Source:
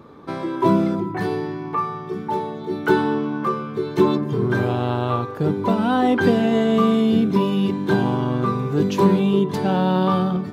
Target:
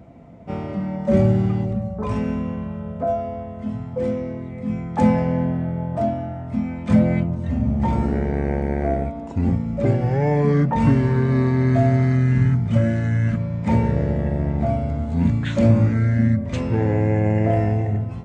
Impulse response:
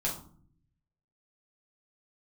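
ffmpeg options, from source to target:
-af "asetrate=25442,aresample=44100"

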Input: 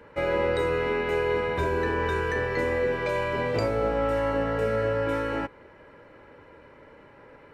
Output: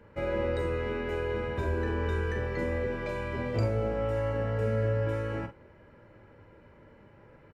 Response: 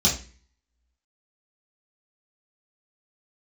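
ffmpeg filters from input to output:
-filter_complex "[0:a]lowshelf=frequency=310:gain=9.5,asplit=2[link_01][link_02];[link_02]adelay=45,volume=-9.5dB[link_03];[link_01][link_03]amix=inputs=2:normalize=0,asplit=2[link_04][link_05];[1:a]atrim=start_sample=2205,asetrate=57330,aresample=44100[link_06];[link_05][link_06]afir=irnorm=-1:irlink=0,volume=-26dB[link_07];[link_04][link_07]amix=inputs=2:normalize=0,volume=-8.5dB"

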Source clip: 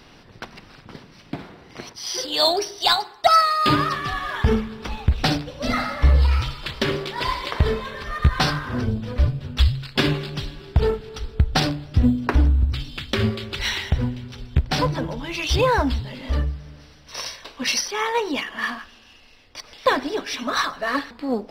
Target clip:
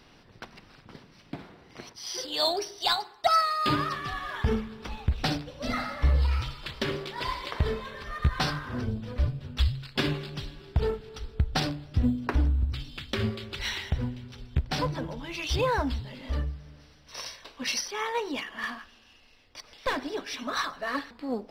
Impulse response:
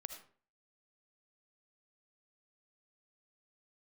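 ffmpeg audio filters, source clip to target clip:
-filter_complex "[0:a]asplit=3[link_01][link_02][link_03];[link_01]afade=type=out:start_time=18.2:duration=0.02[link_04];[link_02]aeval=exprs='clip(val(0),-1,0.106)':channel_layout=same,afade=type=in:start_time=18.2:duration=0.02,afade=type=out:start_time=20.09:duration=0.02[link_05];[link_03]afade=type=in:start_time=20.09:duration=0.02[link_06];[link_04][link_05][link_06]amix=inputs=3:normalize=0,volume=-7.5dB"

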